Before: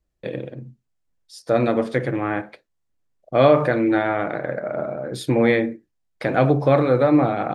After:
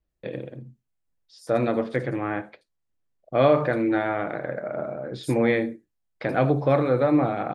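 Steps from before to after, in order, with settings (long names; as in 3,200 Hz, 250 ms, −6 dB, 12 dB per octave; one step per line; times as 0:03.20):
0:01.80–0:03.43: Bessel low-pass filter 8,500 Hz
multiband delay without the direct sound lows, highs 80 ms, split 5,400 Hz
level −4 dB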